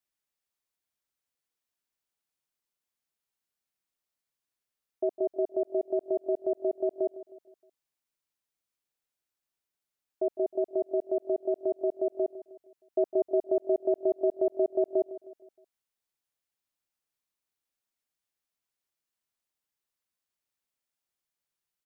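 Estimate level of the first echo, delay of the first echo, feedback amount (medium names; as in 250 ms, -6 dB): -15.0 dB, 156 ms, 46%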